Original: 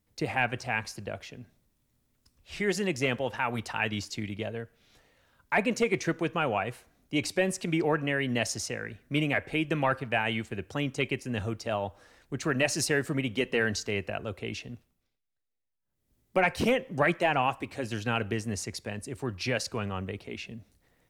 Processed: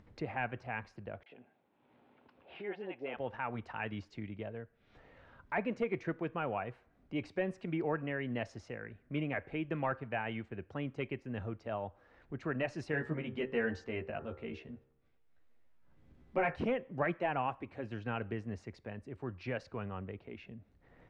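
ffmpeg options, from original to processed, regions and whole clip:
ffmpeg -i in.wav -filter_complex "[0:a]asettb=1/sr,asplit=3[link_01][link_02][link_03];[link_01]atrim=end=1.234[link_04];[link_02]atrim=start=1.23:end=3.17,asetpts=PTS-STARTPTS,afade=type=in:duration=0.004:curve=qsin,afade=type=out:start_time=1.936:duration=0.004:curve=qsin,highpass=390,equalizer=frequency=800:width_type=q:width=4:gain=8,equalizer=frequency=1200:width_type=q:width=4:gain=-5,equalizer=frequency=1900:width_type=q:width=4:gain=-7,lowpass=frequency=3300:width=0.5412,lowpass=frequency=3300:width=1.3066,acrossover=split=710[link_05][link_06];[link_06]adelay=30[link_07];[link_05][link_07]amix=inputs=2:normalize=0,atrim=end_sample=85554[link_08];[link_03]atrim=start=3.166[link_09];[link_04][link_08]acrossfade=duration=0.004:curve1=hsin:curve2=qsin[link_10];[link_10][link_09]acrossfade=duration=0.004:curve1=qsin:curve2=hsin,asettb=1/sr,asplit=3[link_11][link_12][link_13];[link_11]atrim=end=12.924[link_14];[link_12]atrim=start=12.92:end=16.56,asetpts=PTS-STARTPTS,afade=type=in:duration=0.004:curve=qsin,afade=type=out:start_time=3.636:duration=0.004:curve=qsin,asplit=2[link_15][link_16];[link_16]adelay=13,volume=-2.5dB[link_17];[link_15][link_17]amix=inputs=2:normalize=0,atrim=end_sample=160524,bandreject=frequency=65.49:width_type=h:width=4,bandreject=frequency=130.98:width_type=h:width=4,bandreject=frequency=196.47:width_type=h:width=4,bandreject=frequency=261.96:width_type=h:width=4,bandreject=frequency=327.45:width_type=h:width=4,bandreject=frequency=392.94:width_type=h:width=4,bandreject=frequency=458.43:width_type=h:width=4,bandreject=frequency=523.92:width_type=h:width=4,bandreject=frequency=589.41:width_type=h:width=4,bandreject=frequency=654.9:width_type=h:width=4,bandreject=frequency=720.39:width_type=h:width=4,bandreject=frequency=785.88:width_type=h:width=4,bandreject=frequency=851.37:width_type=h:width=4,bandreject=frequency=916.86:width_type=h:width=4,bandreject=frequency=982.35:width_type=h:width=4,bandreject=frequency=1047.84:width_type=h:width=4,bandreject=frequency=1113.33:width_type=h:width=4,bandreject=frequency=1178.82:width_type=h:width=4,bandreject=frequency=1244.31:width_type=h:width=4,bandreject=frequency=1309.8:width_type=h:width=4,bandreject=frequency=1375.29:width_type=h:width=4,bandreject=frequency=1440.78:width_type=h:width=4,bandreject=frequency=1506.27:width_type=h:width=4,bandreject=frequency=1571.76:width_type=h:width=4,bandreject=frequency=1637.25:width_type=h:width=4,bandreject=frequency=1702.74:width_type=h:width=4,bandreject=frequency=1768.23:width_type=h:width=4,bandreject=frequency=1833.72:width_type=h:width=4[link_18];[link_13]atrim=start=16.556[link_19];[link_14][link_18]acrossfade=duration=0.004:curve1=hsin:curve2=qsin[link_20];[link_20][link_19]acrossfade=duration=0.004:curve1=qsin:curve2=hsin,lowpass=1900,acompressor=mode=upward:threshold=-37dB:ratio=2.5,volume=-7.5dB" out.wav

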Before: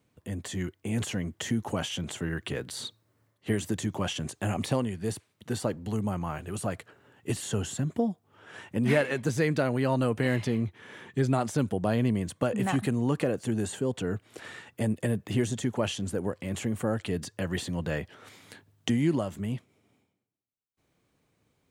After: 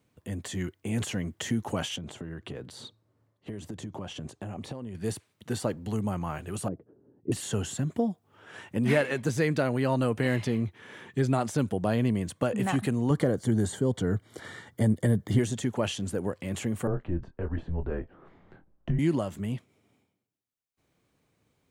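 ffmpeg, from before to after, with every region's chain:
ffmpeg -i in.wav -filter_complex "[0:a]asettb=1/sr,asplit=3[link_01][link_02][link_03];[link_01]atrim=end=1.964[link_04];[link_02]atrim=start=1.96:end=4.95,asetpts=PTS-STARTPTS,afade=type=in:duration=0.004:curve=qsin,afade=type=out:start_time=2.986:duration=0.004:curve=qsin,lowpass=frequency=2400:poles=1,equalizer=frequency=1900:width=1:gain=-5.5,acompressor=threshold=-33dB:ratio=10:attack=3.2:release=140:knee=1:detection=peak[link_05];[link_03]atrim=start=4.946[link_06];[link_04][link_05]acrossfade=duration=0.004:curve1=hsin:curve2=qsin[link_07];[link_07][link_06]acrossfade=duration=0.004:curve1=qsin:curve2=hsin,asettb=1/sr,asplit=3[link_08][link_09][link_10];[link_08]atrim=end=6.684[link_11];[link_09]atrim=start=6.68:end=7.32,asetpts=PTS-STARTPTS,afade=type=in:duration=0.004:curve=qsin,afade=type=out:start_time=0.636:duration=0.004:curve=qsin,lowpass=frequency=340:width_type=q:width=1.7,equalizer=frequency=96:width_type=o:width=0.84:gain=-5.5[link_12];[link_10]atrim=start=7.316[link_13];[link_11][link_12]acrossfade=duration=0.004:curve1=hsin:curve2=qsin[link_14];[link_14][link_13]acrossfade=duration=0.004:curve1=qsin:curve2=hsin,asettb=1/sr,asplit=3[link_15][link_16][link_17];[link_15]atrim=end=13.104[link_18];[link_16]atrim=start=13.1:end=15.39,asetpts=PTS-STARTPTS,afade=type=in:duration=0.004:curve=qsin,afade=type=out:start_time=2.286:duration=0.004:curve=qsin,asuperstop=centerf=2600:order=4:qfactor=4.3,lowshelf=frequency=210:gain=7.5[link_19];[link_17]atrim=start=15.386[link_20];[link_18][link_19]acrossfade=duration=0.004:curve1=hsin:curve2=qsin[link_21];[link_21][link_20]acrossfade=duration=0.004:curve1=qsin:curve2=hsin,asettb=1/sr,asplit=3[link_22][link_23][link_24];[link_22]atrim=end=16.874[link_25];[link_23]atrim=start=16.87:end=18.99,asetpts=PTS-STARTPTS,afade=type=in:duration=0.004:curve=qsin,afade=type=out:start_time=2.116:duration=0.004:curve=qsin,lowpass=1000,afreqshift=-97,asplit=2[link_26][link_27];[link_27]adelay=24,volume=-9.5dB[link_28];[link_26][link_28]amix=inputs=2:normalize=0,atrim=end_sample=93492[link_29];[link_24]atrim=start=18.986[link_30];[link_25][link_29]acrossfade=duration=0.004:curve1=hsin:curve2=qsin[link_31];[link_31][link_30]acrossfade=duration=0.004:curve1=qsin:curve2=hsin" out.wav

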